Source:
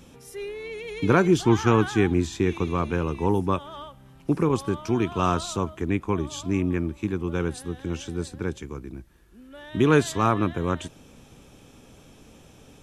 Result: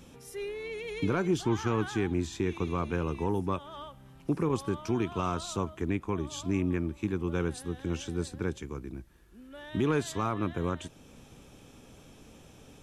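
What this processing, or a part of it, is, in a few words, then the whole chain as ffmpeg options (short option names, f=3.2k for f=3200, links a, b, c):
soft clipper into limiter: -af "asoftclip=type=tanh:threshold=-7dB,alimiter=limit=-16dB:level=0:latency=1:release=426,volume=-2.5dB"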